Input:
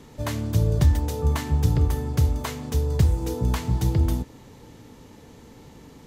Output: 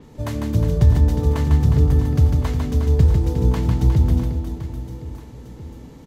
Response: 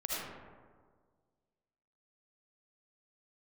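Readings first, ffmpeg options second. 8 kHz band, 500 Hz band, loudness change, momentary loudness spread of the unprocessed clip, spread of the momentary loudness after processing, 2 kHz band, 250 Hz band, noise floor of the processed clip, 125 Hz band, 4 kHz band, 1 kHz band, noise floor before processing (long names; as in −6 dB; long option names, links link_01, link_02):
−4.0 dB, +4.0 dB, +5.5 dB, 8 LU, 19 LU, 0.0 dB, +5.5 dB, −42 dBFS, +5.5 dB, −1.5 dB, +1.0 dB, −48 dBFS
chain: -af "tiltshelf=frequency=710:gain=3.5,aecho=1:1:150|360|654|1066|1642:0.631|0.398|0.251|0.158|0.1,adynamicequalizer=threshold=0.00224:dfrequency=6300:dqfactor=0.7:tfrequency=6300:tqfactor=0.7:attack=5:release=100:ratio=0.375:range=2.5:mode=cutabove:tftype=highshelf"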